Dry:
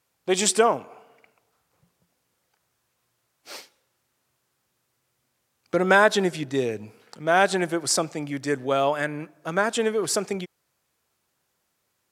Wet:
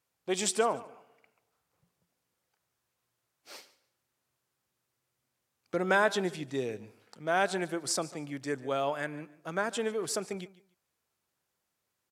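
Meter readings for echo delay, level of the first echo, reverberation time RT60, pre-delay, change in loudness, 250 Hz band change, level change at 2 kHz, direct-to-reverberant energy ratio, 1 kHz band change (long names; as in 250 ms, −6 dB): 145 ms, −19.0 dB, no reverb audible, no reverb audible, −8.5 dB, −8.5 dB, −8.5 dB, no reverb audible, −8.5 dB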